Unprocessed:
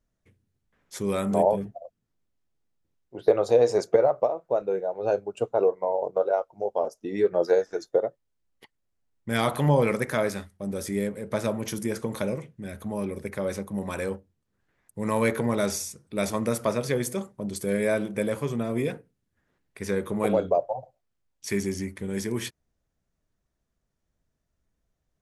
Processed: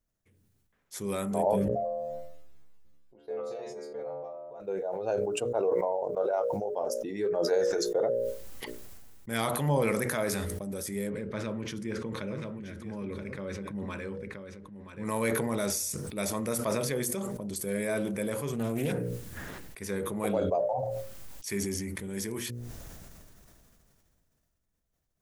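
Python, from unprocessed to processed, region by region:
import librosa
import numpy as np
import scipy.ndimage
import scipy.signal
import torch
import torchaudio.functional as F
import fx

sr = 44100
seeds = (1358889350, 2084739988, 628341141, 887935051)

y = fx.chain(x, sr, fx.high_shelf(hz=5300.0, db=-9.5),
    fx.stiff_resonator(f0_hz=71.0, decay_s=0.8, stiffness=0.002),
    fx.sustainer(db_per_s=37.0), at=(1.68, 4.6))
y = fx.chain(y, sr, fx.lowpass(hz=3400.0, slope=12),
    fx.peak_eq(hz=720.0, db=-9.5, octaves=0.73),
    fx.echo_single(ms=978, db=-10.5), at=(11.1, 15.05))
y = fx.chain(y, sr, fx.bass_treble(bass_db=6, treble_db=5),
    fx.doppler_dist(depth_ms=0.27), at=(18.53, 18.93))
y = fx.high_shelf(y, sr, hz=8600.0, db=10.5)
y = fx.hum_notches(y, sr, base_hz=60, count=10)
y = fx.sustainer(y, sr, db_per_s=20.0)
y = y * 10.0 ** (-6.0 / 20.0)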